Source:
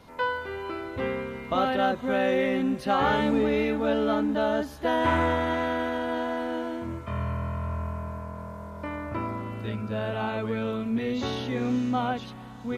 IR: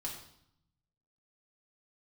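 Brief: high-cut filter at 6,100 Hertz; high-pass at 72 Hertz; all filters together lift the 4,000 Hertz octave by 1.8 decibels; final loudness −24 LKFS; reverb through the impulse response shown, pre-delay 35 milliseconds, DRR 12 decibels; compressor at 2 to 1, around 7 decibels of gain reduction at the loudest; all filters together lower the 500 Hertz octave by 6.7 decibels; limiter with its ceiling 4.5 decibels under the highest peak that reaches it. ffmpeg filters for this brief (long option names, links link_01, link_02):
-filter_complex "[0:a]highpass=72,lowpass=6100,equalizer=frequency=500:width_type=o:gain=-8.5,equalizer=frequency=4000:width_type=o:gain=3,acompressor=threshold=-35dB:ratio=2,alimiter=level_in=1.5dB:limit=-24dB:level=0:latency=1,volume=-1.5dB,asplit=2[link_01][link_02];[1:a]atrim=start_sample=2205,adelay=35[link_03];[link_02][link_03]afir=irnorm=-1:irlink=0,volume=-11.5dB[link_04];[link_01][link_04]amix=inputs=2:normalize=0,volume=11.5dB"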